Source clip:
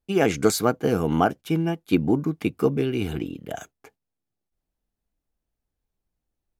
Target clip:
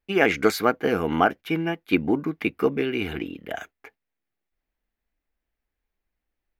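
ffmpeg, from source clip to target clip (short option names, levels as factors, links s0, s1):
-af "equalizer=f=125:t=o:w=1:g=-10,equalizer=f=2000:t=o:w=1:g=10,equalizer=f=8000:t=o:w=1:g=-11"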